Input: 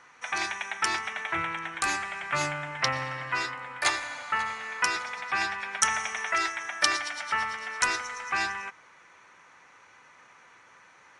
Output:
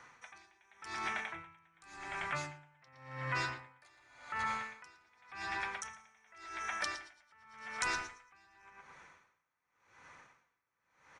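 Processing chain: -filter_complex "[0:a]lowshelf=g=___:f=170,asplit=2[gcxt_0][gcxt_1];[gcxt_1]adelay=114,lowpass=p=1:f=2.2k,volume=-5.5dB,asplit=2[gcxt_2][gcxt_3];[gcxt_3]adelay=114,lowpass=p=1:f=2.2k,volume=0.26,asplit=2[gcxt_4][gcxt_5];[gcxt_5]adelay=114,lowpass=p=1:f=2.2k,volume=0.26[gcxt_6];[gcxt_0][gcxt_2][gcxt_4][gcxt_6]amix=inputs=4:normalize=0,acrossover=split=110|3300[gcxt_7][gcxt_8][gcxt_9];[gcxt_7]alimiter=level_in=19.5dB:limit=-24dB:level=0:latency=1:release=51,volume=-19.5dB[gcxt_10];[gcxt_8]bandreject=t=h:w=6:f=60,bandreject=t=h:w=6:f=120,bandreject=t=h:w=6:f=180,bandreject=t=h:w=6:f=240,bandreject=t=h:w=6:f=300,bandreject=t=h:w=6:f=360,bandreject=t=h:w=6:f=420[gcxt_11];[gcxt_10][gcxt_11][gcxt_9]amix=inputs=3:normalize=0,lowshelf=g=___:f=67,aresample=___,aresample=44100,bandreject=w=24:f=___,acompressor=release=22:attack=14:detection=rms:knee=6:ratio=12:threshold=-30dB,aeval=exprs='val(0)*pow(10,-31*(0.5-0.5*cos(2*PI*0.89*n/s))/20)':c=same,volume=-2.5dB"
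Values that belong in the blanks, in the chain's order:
9.5, 2, 22050, 2.9k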